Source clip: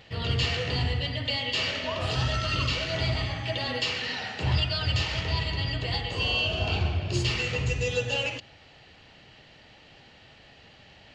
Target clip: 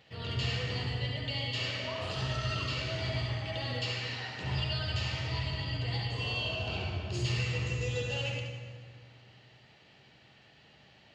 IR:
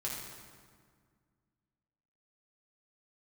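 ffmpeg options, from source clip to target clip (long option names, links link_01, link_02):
-filter_complex "[0:a]highpass=83,asplit=2[link_01][link_02];[1:a]atrim=start_sample=2205,adelay=68[link_03];[link_02][link_03]afir=irnorm=-1:irlink=0,volume=-3dB[link_04];[link_01][link_04]amix=inputs=2:normalize=0,volume=-9dB"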